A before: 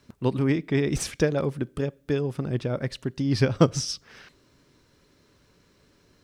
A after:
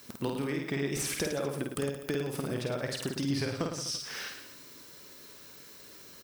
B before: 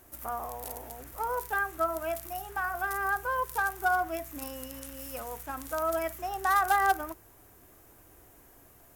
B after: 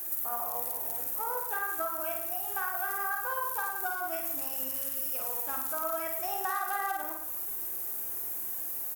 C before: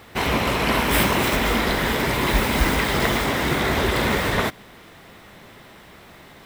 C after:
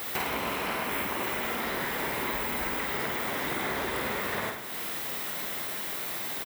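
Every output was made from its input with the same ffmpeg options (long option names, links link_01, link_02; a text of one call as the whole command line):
ffmpeg -i in.wav -filter_complex "[0:a]acrossover=split=2600[link_01][link_02];[link_02]acompressor=threshold=-39dB:ratio=4:attack=1:release=60[link_03];[link_01][link_03]amix=inputs=2:normalize=0,aemphasis=mode=production:type=bsi,acompressor=threshold=-36dB:ratio=12,aecho=1:1:50|107.5|173.6|249.7|337.1:0.631|0.398|0.251|0.158|0.1,volume=5.5dB" out.wav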